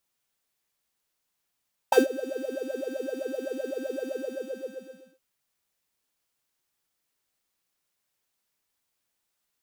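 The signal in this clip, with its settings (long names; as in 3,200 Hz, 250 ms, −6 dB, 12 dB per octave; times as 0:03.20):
subtractive patch with filter wobble C5, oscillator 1 square, interval +19 semitones, oscillator 2 level −8 dB, sub −8.5 dB, noise −10.5 dB, filter highpass, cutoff 270 Hz, Q 11, filter envelope 1.5 octaves, filter decay 0.06 s, attack 6.2 ms, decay 0.14 s, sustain −21 dB, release 1.08 s, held 2.19 s, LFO 7.8 Hz, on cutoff 0.7 octaves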